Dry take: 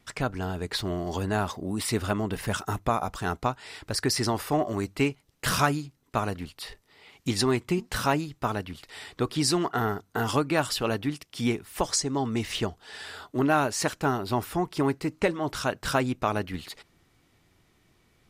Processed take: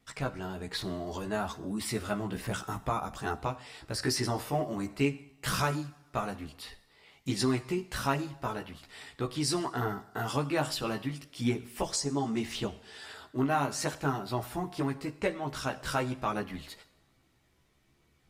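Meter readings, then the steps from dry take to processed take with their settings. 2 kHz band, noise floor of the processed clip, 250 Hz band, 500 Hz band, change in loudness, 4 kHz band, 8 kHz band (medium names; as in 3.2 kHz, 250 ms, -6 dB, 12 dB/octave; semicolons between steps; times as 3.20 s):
-5.5 dB, -68 dBFS, -4.5 dB, -5.5 dB, -5.0 dB, -5.0 dB, -5.5 dB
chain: two-slope reverb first 0.72 s, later 2 s, DRR 12.5 dB; chorus voices 2, 0.61 Hz, delay 15 ms, depth 1.1 ms; trim -2.5 dB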